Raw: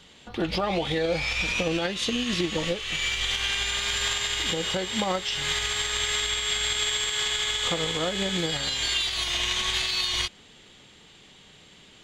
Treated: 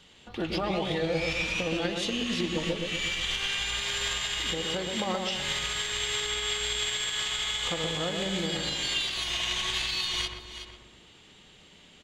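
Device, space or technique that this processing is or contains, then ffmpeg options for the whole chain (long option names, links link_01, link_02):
ducked delay: -filter_complex "[0:a]equalizer=frequency=2800:width=6:gain=3,asplit=2[link_01][link_02];[link_02]adelay=124,lowpass=frequency=1100:poles=1,volume=-3dB,asplit=2[link_03][link_04];[link_04]adelay=124,lowpass=frequency=1100:poles=1,volume=0.54,asplit=2[link_05][link_06];[link_06]adelay=124,lowpass=frequency=1100:poles=1,volume=0.54,asplit=2[link_07][link_08];[link_08]adelay=124,lowpass=frequency=1100:poles=1,volume=0.54,asplit=2[link_09][link_10];[link_10]adelay=124,lowpass=frequency=1100:poles=1,volume=0.54,asplit=2[link_11][link_12];[link_12]adelay=124,lowpass=frequency=1100:poles=1,volume=0.54,asplit=2[link_13][link_14];[link_14]adelay=124,lowpass=frequency=1100:poles=1,volume=0.54[link_15];[link_01][link_03][link_05][link_07][link_09][link_11][link_13][link_15]amix=inputs=8:normalize=0,asplit=3[link_16][link_17][link_18];[link_17]adelay=369,volume=-7.5dB[link_19];[link_18]apad=whole_len=585344[link_20];[link_19][link_20]sidechaincompress=threshold=-41dB:ratio=8:attack=44:release=346[link_21];[link_16][link_21]amix=inputs=2:normalize=0,volume=-4.5dB"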